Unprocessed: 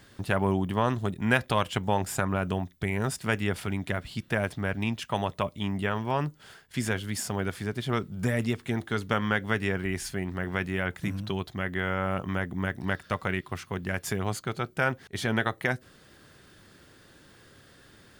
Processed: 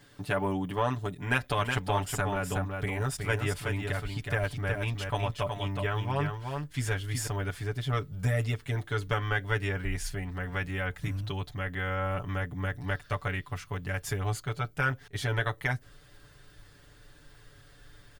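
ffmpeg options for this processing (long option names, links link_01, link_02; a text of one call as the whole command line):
ffmpeg -i in.wav -filter_complex "[0:a]asettb=1/sr,asplit=3[link_01][link_02][link_03];[link_01]atrim=end=1.134[link_04];[link_02]atrim=start=1.13:end=7.27,asetpts=PTS-STARTPTS,afade=type=in:duration=0.004:curve=qsin,afade=type=out:start_time=6.136:duration=0.004:curve=qsin,aecho=1:1:369:0.562,atrim=end_sample=270774[link_05];[link_03]atrim=start=7.266[link_06];[link_04][link_05]acrossfade=duration=0.004:curve1=hsin:curve2=qsin[link_07];[link_07][link_06]acrossfade=duration=0.004:curve1=qsin:curve2=hsin,aecho=1:1:6.9:1,asubboost=boost=10:cutoff=62,volume=-5.5dB" out.wav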